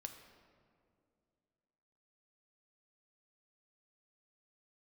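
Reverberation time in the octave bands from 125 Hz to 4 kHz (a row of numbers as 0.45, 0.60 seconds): 2.8, 2.8, 2.7, 2.1, 1.6, 1.2 seconds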